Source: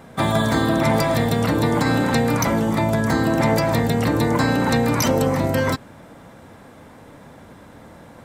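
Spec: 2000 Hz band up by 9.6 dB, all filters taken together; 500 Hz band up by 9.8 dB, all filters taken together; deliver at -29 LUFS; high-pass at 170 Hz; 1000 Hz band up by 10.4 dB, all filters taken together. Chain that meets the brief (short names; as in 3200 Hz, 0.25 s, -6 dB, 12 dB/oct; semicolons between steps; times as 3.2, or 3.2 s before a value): HPF 170 Hz; bell 500 Hz +9 dB; bell 1000 Hz +8 dB; bell 2000 Hz +8.5 dB; gain -16.5 dB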